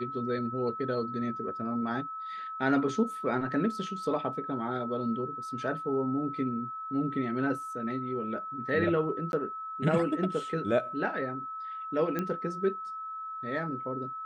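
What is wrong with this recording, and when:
whine 1.3 kHz -36 dBFS
9.32–9.33 s: dropout 11 ms
12.19 s: pop -18 dBFS

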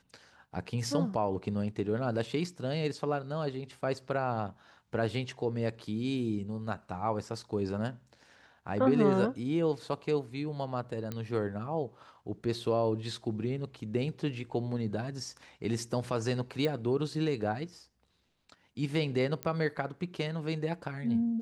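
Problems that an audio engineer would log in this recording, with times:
11.12 s: pop -22 dBFS
16.65 s: pop -20 dBFS
19.43 s: pop -19 dBFS

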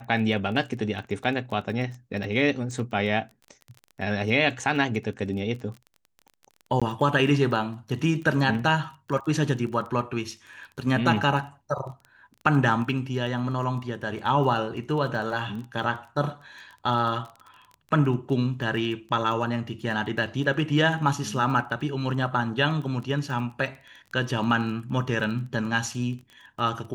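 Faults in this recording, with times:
crackle 18 per s -34 dBFS
6.80–6.82 s: dropout 16 ms

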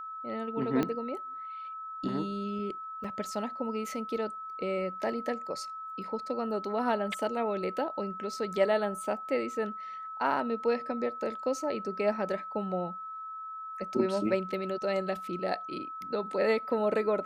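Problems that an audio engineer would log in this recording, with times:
whine 1.3 kHz -38 dBFS
0.83 s: pop -16 dBFS
3.04 s: dropout 4.6 ms

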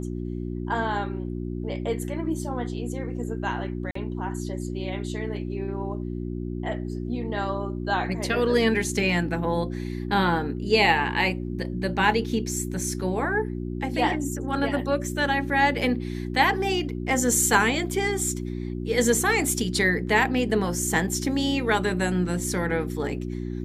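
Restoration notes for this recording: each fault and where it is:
hum 60 Hz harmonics 6 -31 dBFS
3.91–3.95 s: dropout 44 ms

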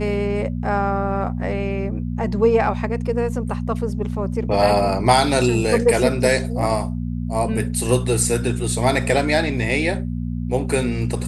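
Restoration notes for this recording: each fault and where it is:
hum 60 Hz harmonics 4 -25 dBFS

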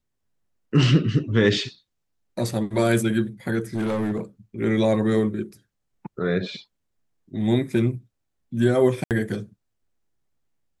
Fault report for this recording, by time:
3.60–4.19 s: clipped -20.5 dBFS
9.04–9.11 s: dropout 68 ms

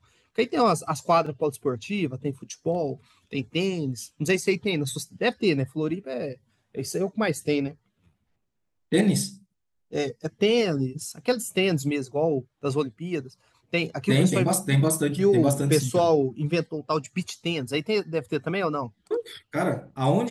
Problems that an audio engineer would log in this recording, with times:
1.26 s: dropout 4.1 ms

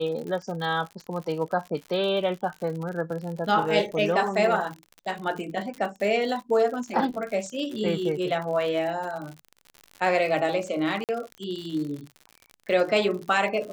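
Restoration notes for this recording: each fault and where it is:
crackle 78 per s -33 dBFS
11.04–11.09 s: dropout 48 ms

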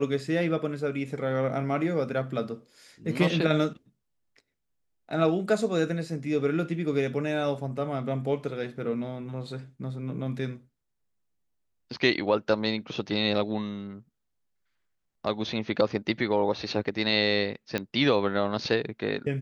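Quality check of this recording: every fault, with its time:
17.78 s: pop -14 dBFS

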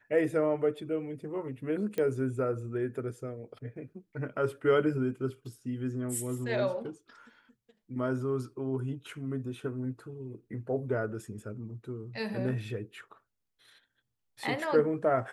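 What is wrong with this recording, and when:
1.98 s: pop -20 dBFS

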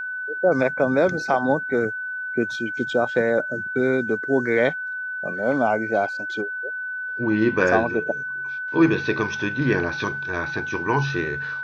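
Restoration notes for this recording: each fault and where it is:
whine 1.5 kHz -27 dBFS

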